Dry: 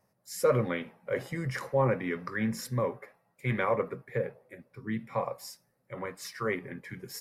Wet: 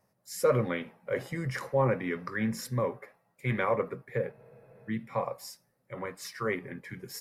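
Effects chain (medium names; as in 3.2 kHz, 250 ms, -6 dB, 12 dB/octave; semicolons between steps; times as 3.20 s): spectral freeze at 4.34 s, 0.55 s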